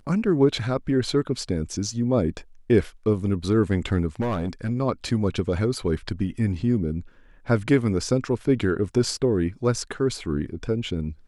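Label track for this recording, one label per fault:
4.200000	4.710000	clipping −21.5 dBFS

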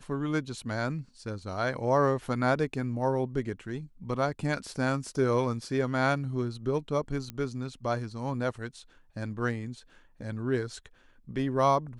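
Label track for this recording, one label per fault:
7.300000	7.300000	click −21 dBFS

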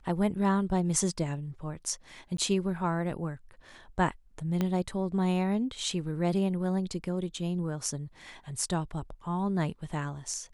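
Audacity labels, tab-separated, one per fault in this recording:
2.370000	2.380000	drop-out 13 ms
4.610000	4.610000	click −16 dBFS

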